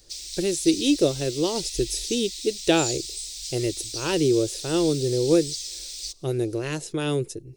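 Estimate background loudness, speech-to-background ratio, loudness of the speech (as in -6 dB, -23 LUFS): -32.0 LUFS, 7.0 dB, -25.0 LUFS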